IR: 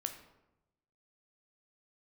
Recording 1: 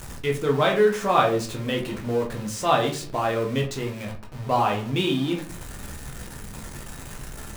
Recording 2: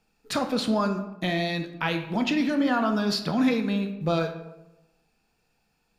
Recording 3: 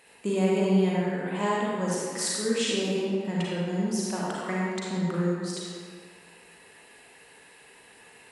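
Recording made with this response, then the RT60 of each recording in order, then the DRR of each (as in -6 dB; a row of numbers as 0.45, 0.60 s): 2; 0.45, 0.95, 1.9 s; -0.5, 6.0, -5.5 dB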